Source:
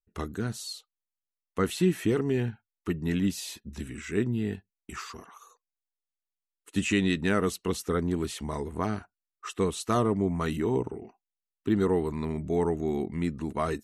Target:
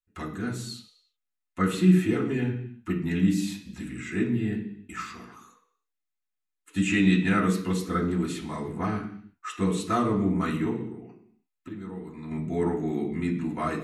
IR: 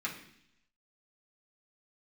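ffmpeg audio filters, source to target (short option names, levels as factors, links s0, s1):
-filter_complex "[0:a]asettb=1/sr,asplit=3[s0][s1][s2];[s0]atrim=end=10.704[s3];[s1]atrim=start=10.7:end=12.31,asetpts=PTS-STARTPTS,afade=t=in:d=0.004:c=qsin,afade=t=out:st=1.606:d=0.004:c=qsin,acompressor=threshold=0.0126:ratio=6[s4];[s2]atrim=start=12.306[s5];[s3][s4]acrossfade=d=0.004:c1=hsin:c2=qsin[s6];[s6][s5]acrossfade=d=0.004:c1=qsin:c2=hsin[s7];[1:a]atrim=start_sample=2205,afade=t=out:st=0.41:d=0.01,atrim=end_sample=18522[s8];[s7][s8]afir=irnorm=-1:irlink=0,volume=0.841"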